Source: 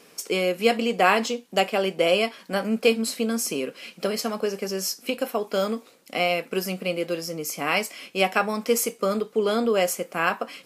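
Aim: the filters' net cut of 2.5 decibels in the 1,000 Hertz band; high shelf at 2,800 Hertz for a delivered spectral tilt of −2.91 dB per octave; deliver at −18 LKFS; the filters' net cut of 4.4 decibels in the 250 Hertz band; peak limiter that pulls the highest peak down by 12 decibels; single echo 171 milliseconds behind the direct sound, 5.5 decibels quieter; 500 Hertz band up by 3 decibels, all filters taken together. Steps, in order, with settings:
parametric band 250 Hz −7.5 dB
parametric band 500 Hz +7 dB
parametric band 1,000 Hz −7.5 dB
high-shelf EQ 2,800 Hz +3.5 dB
brickwall limiter −15.5 dBFS
single-tap delay 171 ms −5.5 dB
level +7.5 dB

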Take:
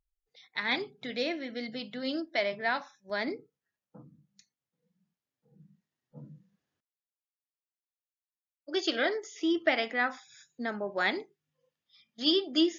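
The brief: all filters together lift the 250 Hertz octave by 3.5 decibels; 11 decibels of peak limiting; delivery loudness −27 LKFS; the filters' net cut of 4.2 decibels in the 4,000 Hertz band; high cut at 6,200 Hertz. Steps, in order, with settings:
low-pass filter 6,200 Hz
parametric band 250 Hz +5 dB
parametric band 4,000 Hz −5 dB
level +7 dB
brickwall limiter −15.5 dBFS

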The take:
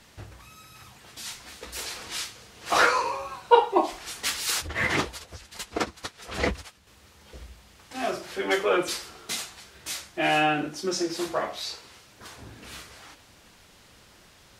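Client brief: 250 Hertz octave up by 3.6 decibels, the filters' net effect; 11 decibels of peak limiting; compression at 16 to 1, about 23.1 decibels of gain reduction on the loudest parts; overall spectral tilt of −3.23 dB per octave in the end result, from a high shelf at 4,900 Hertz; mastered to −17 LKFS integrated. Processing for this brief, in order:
parametric band 250 Hz +5.5 dB
high-shelf EQ 4,900 Hz −6 dB
downward compressor 16 to 1, threshold −34 dBFS
level +26.5 dB
brickwall limiter −6.5 dBFS

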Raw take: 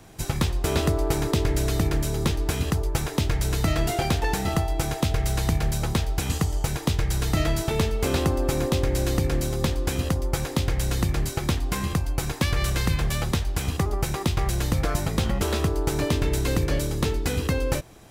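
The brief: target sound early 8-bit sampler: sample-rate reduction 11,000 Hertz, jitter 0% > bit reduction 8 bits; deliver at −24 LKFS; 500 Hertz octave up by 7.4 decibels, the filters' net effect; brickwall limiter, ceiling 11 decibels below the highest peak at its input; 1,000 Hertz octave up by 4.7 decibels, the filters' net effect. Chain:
parametric band 500 Hz +8.5 dB
parametric band 1,000 Hz +3 dB
brickwall limiter −16 dBFS
sample-rate reduction 11,000 Hz, jitter 0%
bit reduction 8 bits
level +2 dB

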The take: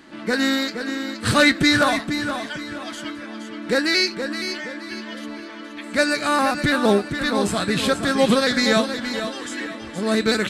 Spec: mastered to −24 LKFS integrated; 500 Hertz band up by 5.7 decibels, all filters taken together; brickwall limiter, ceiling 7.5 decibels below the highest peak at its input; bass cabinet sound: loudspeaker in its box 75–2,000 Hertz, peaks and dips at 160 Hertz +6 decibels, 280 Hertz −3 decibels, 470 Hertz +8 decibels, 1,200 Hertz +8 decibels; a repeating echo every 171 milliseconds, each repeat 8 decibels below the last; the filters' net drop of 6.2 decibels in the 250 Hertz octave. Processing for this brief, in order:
parametric band 250 Hz −8 dB
parametric band 500 Hz +3.5 dB
brickwall limiter −12 dBFS
loudspeaker in its box 75–2,000 Hz, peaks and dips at 160 Hz +6 dB, 280 Hz −3 dB, 470 Hz +8 dB, 1,200 Hz +8 dB
repeating echo 171 ms, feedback 40%, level −8 dB
level −3 dB

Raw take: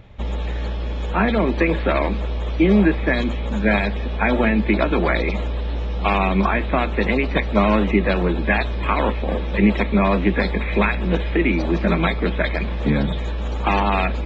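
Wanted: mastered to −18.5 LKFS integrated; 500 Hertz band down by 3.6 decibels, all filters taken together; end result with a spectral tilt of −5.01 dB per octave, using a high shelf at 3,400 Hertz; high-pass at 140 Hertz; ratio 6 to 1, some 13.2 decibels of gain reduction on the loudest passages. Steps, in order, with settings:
high-pass filter 140 Hz
parametric band 500 Hz −4.5 dB
high-shelf EQ 3,400 Hz −9 dB
downward compressor 6 to 1, threshold −28 dBFS
level +14 dB

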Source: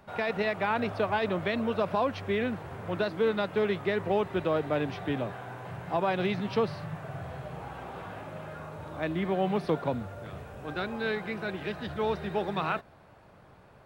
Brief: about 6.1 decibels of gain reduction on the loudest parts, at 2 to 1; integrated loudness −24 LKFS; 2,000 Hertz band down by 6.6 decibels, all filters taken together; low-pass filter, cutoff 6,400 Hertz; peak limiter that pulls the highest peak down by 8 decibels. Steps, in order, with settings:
low-pass filter 6,400 Hz
parametric band 2,000 Hz −9 dB
downward compressor 2 to 1, threshold −34 dBFS
level +15 dB
brickwall limiter −13.5 dBFS

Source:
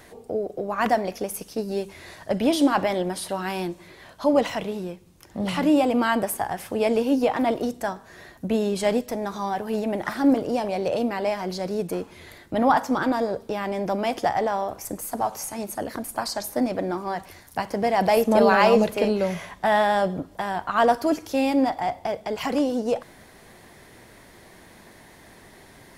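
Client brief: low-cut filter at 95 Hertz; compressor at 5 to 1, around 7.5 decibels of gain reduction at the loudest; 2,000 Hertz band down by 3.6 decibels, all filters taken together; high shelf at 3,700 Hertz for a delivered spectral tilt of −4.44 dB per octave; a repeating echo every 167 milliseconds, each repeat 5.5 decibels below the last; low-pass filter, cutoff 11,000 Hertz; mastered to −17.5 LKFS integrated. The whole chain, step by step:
high-pass filter 95 Hz
low-pass filter 11,000 Hz
parametric band 2,000 Hz −6 dB
high-shelf EQ 3,700 Hz +5 dB
downward compressor 5 to 1, threshold −22 dBFS
repeating echo 167 ms, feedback 53%, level −5.5 dB
level +9.5 dB

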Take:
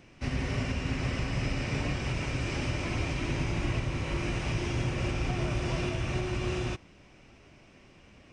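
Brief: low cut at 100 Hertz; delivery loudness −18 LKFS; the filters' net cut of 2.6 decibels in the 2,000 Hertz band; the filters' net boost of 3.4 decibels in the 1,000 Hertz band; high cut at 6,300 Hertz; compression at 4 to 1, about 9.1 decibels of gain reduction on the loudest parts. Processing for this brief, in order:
high-pass filter 100 Hz
low-pass filter 6,300 Hz
parametric band 1,000 Hz +5.5 dB
parametric band 2,000 Hz −4.5 dB
downward compressor 4 to 1, threshold −39 dBFS
level +23.5 dB

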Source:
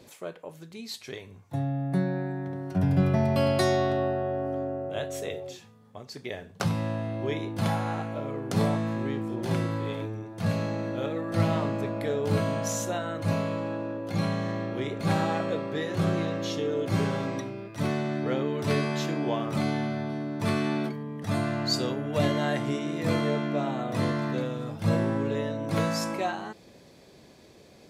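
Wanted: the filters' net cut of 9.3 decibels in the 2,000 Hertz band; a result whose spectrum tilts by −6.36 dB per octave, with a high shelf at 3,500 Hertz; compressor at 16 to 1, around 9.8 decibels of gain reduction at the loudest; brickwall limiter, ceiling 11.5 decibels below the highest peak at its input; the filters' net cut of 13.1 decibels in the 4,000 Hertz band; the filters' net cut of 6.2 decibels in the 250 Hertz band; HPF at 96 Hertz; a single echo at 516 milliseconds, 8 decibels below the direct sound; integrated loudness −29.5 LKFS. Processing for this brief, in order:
high-pass filter 96 Hz
parametric band 250 Hz −8.5 dB
parametric band 2,000 Hz −8 dB
high-shelf EQ 3,500 Hz −8 dB
parametric band 4,000 Hz −8.5 dB
downward compressor 16 to 1, threshold −33 dBFS
brickwall limiter −31 dBFS
single-tap delay 516 ms −8 dB
level +10.5 dB

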